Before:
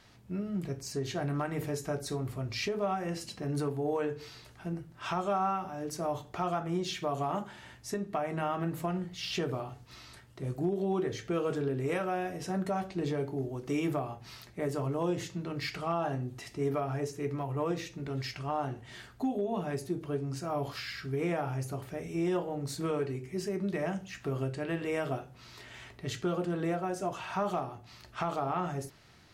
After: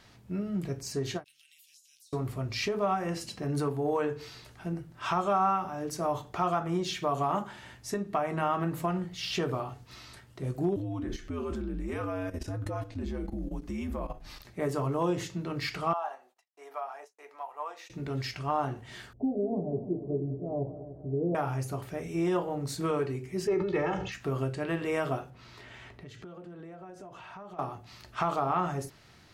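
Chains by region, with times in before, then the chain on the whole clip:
1.24–2.13 elliptic high-pass 2900 Hz, stop band 60 dB + compressor 20:1, threshold -57 dBFS
10.76–14.45 low shelf 360 Hz +6.5 dB + frequency shift -82 Hz + level quantiser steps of 12 dB
15.93–17.9 gate -44 dBFS, range -49 dB + ladder high-pass 650 Hz, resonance 45%
19.13–21.35 steep low-pass 640 Hz + multi-head echo 98 ms, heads second and third, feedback 49%, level -14 dB
23.47–24.12 air absorption 160 m + comb 2.3 ms, depth 98% + sustainer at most 45 dB/s
25.3–27.59 compressor 12:1, threshold -44 dBFS + high shelf 4800 Hz -11 dB
whole clip: dynamic EQ 1100 Hz, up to +5 dB, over -49 dBFS, Q 2.3; ending taper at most 400 dB/s; gain +2 dB

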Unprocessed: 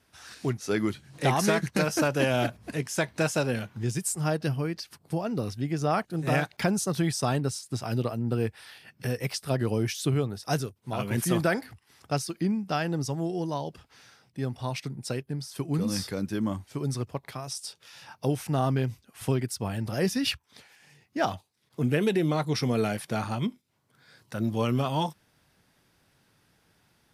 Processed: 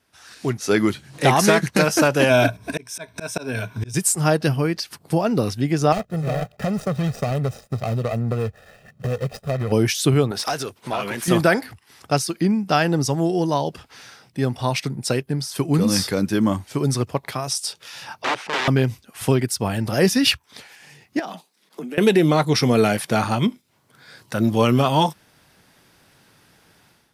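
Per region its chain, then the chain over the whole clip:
2.29–3.94 ripple EQ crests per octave 1.6, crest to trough 11 dB + auto swell 0.4 s
5.92–9.72 median filter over 41 samples + comb 1.6 ms, depth 73% + compressor, threshold -28 dBFS
10.31–11.28 compressor 8:1, threshold -38 dBFS + overdrive pedal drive 20 dB, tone 4600 Hz, clips at -22.5 dBFS
18.22–18.68 wrapped overs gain 25.5 dB + BPF 370–3500 Hz
21.19–21.98 steep high-pass 160 Hz 96 dB/oct + compressor 16:1, threshold -37 dBFS
whole clip: AGC gain up to 11.5 dB; low shelf 150 Hz -5.5 dB

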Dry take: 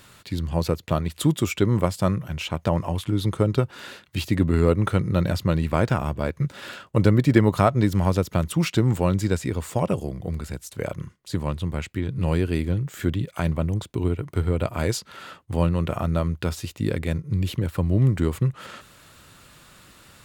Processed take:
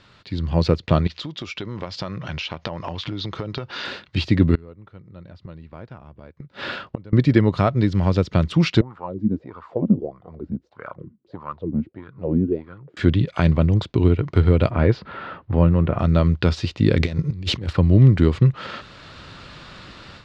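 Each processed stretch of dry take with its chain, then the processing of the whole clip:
1.07–3.85 steep low-pass 6500 Hz + tilt +2 dB/oct + compressor 8:1, threshold -35 dBFS
4.55–7.13 flipped gate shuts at -19 dBFS, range -28 dB + high shelf 4900 Hz -7 dB
8.81–12.97 low shelf 260 Hz +11 dB + wah 1.6 Hz 220–1300 Hz, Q 6.9
14.7–15.99 G.711 law mismatch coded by mu + LPF 1800 Hz
16.97–17.73 self-modulated delay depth 0.17 ms + high shelf 5700 Hz +11.5 dB + negative-ratio compressor -29 dBFS, ratio -0.5
whole clip: Chebyshev low-pass 4700 Hz, order 3; dynamic EQ 880 Hz, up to -4 dB, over -35 dBFS, Q 1; AGC; gain -1 dB

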